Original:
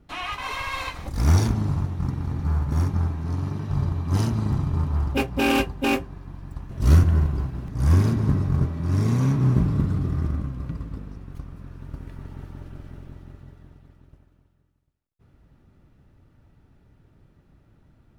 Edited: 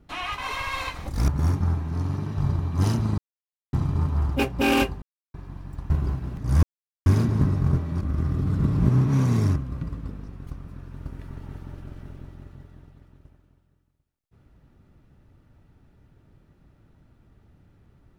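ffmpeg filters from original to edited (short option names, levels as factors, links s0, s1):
-filter_complex "[0:a]asplit=9[s0][s1][s2][s3][s4][s5][s6][s7][s8];[s0]atrim=end=1.282[s9];[s1]atrim=start=2.608:end=4.51,asetpts=PTS-STARTPTS,afade=t=out:st=1.898:d=0.004:c=hsin,apad=pad_dur=0.55[s10];[s2]atrim=start=4.51:end=5.8,asetpts=PTS-STARTPTS,afade=t=in:d=0.004:c=hsin,afade=t=out:st=1.286:d=0.004:c=hsin[s11];[s3]atrim=start=5.8:end=6.12,asetpts=PTS-STARTPTS,volume=0[s12];[s4]atrim=start=6.12:end=6.682,asetpts=PTS-STARTPTS,afade=t=in:d=0.004:c=hsin[s13];[s5]atrim=start=7.208:end=7.94,asetpts=PTS-STARTPTS,afade=t=out:st=0.728:d=0.004:c=hsin,apad=pad_dur=0.43[s14];[s6]atrim=start=7.94:end=8.892,asetpts=PTS-STARTPTS,afade=t=in:d=0.004:c=hsin[s15];[s7]atrim=start=8.888:end=10.442,asetpts=PTS-STARTPTS,areverse[s16];[s8]atrim=start=10.438[s17];[s10][s11][s12][s13]concat=n=4:v=0:a=1[s18];[s9][s18]acrossfade=d=0.004:c1=hsin:c2=hsin[s19];[s14][s15]concat=n=2:v=0:a=1[s20];[s19][s20]acrossfade=d=0.004:c1=hsin:c2=hsin[s21];[s21][s16]acrossfade=d=0.004:c1=hsin:c2=hsin[s22];[s22][s17]acrossfade=d=0.004:c1=hsin:c2=hsin"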